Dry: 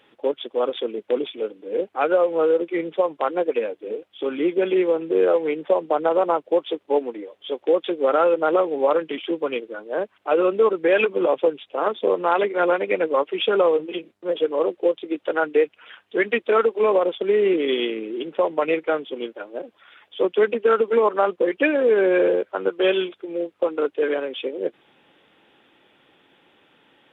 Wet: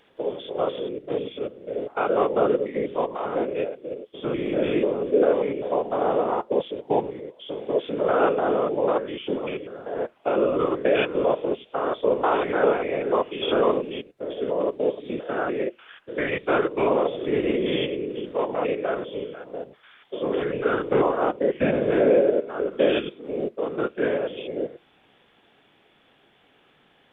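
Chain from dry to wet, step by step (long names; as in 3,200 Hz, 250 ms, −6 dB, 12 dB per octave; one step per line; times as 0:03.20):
spectrum averaged block by block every 100 ms
phase-vocoder pitch shift with formants kept −1.5 semitones
random phases in short frames
on a send: convolution reverb RT60 0.20 s, pre-delay 3 ms, DRR 17 dB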